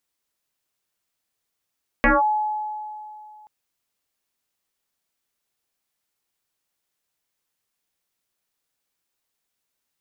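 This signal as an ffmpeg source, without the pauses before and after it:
ffmpeg -f lavfi -i "aevalsrc='0.251*pow(10,-3*t/2.58)*sin(2*PI*851*t+5.3*clip(1-t/0.18,0,1)*sin(2*PI*0.32*851*t))':duration=1.43:sample_rate=44100" out.wav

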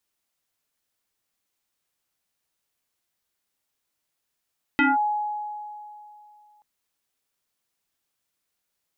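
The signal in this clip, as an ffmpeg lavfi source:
ffmpeg -f lavfi -i "aevalsrc='0.178*pow(10,-3*t/2.68)*sin(2*PI*839*t+3*clip(1-t/0.18,0,1)*sin(2*PI*0.68*839*t))':duration=1.83:sample_rate=44100" out.wav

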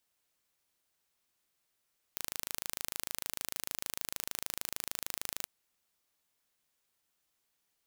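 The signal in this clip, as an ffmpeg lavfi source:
ffmpeg -f lavfi -i "aevalsrc='0.376*eq(mod(n,1658),0)':duration=3.3:sample_rate=44100" out.wav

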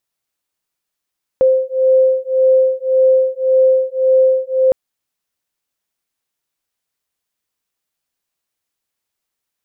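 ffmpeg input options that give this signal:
ffmpeg -f lavfi -i "aevalsrc='0.224*(sin(2*PI*521*t)+sin(2*PI*522.8*t))':duration=3.31:sample_rate=44100" out.wav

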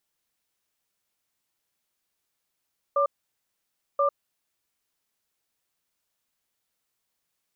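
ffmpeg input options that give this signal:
ffmpeg -f lavfi -i "aevalsrc='0.0794*(sin(2*PI*565*t)+sin(2*PI*1190*t))*clip(min(mod(t,1.03),0.1-mod(t,1.03))/0.005,0,1)':duration=1.92:sample_rate=44100" out.wav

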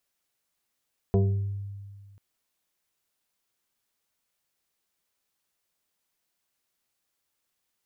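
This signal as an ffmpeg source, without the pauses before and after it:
ffmpeg -f lavfi -i "aevalsrc='0.141*pow(10,-3*t/1.84)*sin(2*PI*99.8*t+1.3*pow(10,-3*t/0.78)*sin(2*PI*2.93*99.8*t))':duration=1.04:sample_rate=44100" out.wav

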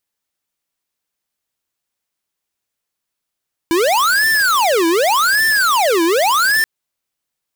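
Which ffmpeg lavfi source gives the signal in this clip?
ffmpeg -f lavfi -i "aevalsrc='0.2*(2*lt(mod((1054*t-726/(2*PI*0.86)*sin(2*PI*0.86*t)),1),0.5)-1)':duration=2.93:sample_rate=44100" out.wav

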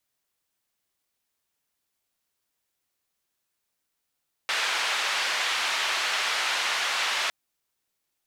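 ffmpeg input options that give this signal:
ffmpeg -f lavfi -i "anoisesrc=color=white:duration=2.81:sample_rate=44100:seed=1,highpass=frequency=900,lowpass=frequency=3300,volume=-12.9dB" out.wav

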